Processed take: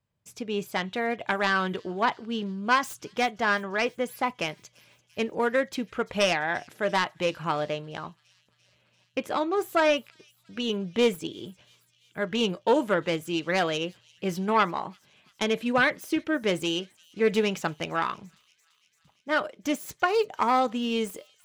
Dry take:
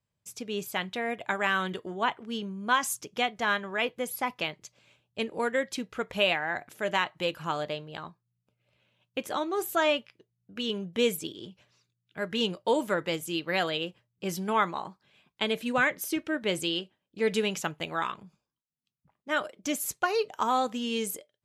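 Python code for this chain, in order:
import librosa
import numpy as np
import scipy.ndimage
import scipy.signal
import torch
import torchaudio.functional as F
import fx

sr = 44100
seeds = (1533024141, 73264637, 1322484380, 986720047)

y = fx.self_delay(x, sr, depth_ms=0.11)
y = fx.high_shelf(y, sr, hz=4600.0, db=-9.5)
y = fx.echo_wet_highpass(y, sr, ms=341, feedback_pct=71, hz=4400.0, wet_db=-19.5)
y = y * 10.0 ** (4.0 / 20.0)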